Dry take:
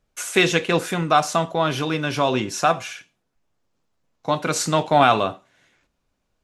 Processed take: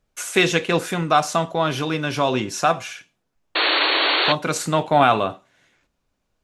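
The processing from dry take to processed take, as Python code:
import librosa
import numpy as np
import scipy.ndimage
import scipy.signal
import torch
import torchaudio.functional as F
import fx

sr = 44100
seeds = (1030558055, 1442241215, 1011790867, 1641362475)

y = fx.spec_paint(x, sr, seeds[0], shape='noise', start_s=3.55, length_s=0.78, low_hz=280.0, high_hz=4500.0, level_db=-19.0)
y = fx.peak_eq(y, sr, hz=5500.0, db=-8.0, octaves=0.77, at=(4.57, 5.3))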